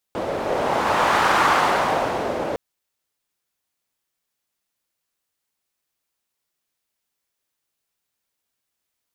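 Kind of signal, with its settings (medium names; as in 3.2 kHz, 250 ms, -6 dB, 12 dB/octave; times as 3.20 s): wind-like swept noise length 2.41 s, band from 520 Hz, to 1.1 kHz, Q 1.7, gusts 1, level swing 8.5 dB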